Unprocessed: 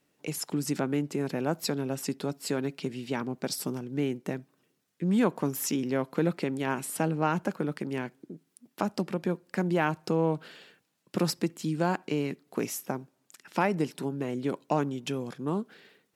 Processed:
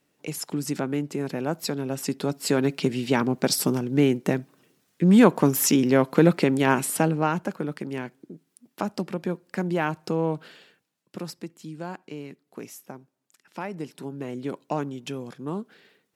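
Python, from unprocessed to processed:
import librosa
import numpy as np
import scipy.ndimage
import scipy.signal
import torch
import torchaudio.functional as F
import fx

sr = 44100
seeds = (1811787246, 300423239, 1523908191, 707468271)

y = fx.gain(x, sr, db=fx.line((1.76, 1.5), (2.77, 9.5), (6.77, 9.5), (7.43, 1.0), (10.46, 1.0), (11.25, -8.0), (13.59, -8.0), (14.26, -1.0)))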